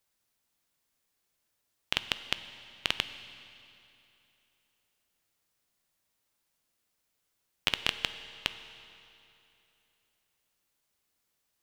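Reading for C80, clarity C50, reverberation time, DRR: 12.0 dB, 11.5 dB, 2.9 s, 10.5 dB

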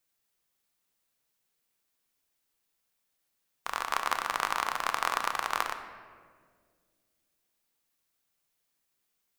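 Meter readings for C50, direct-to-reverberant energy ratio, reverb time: 8.5 dB, 6.5 dB, 1.9 s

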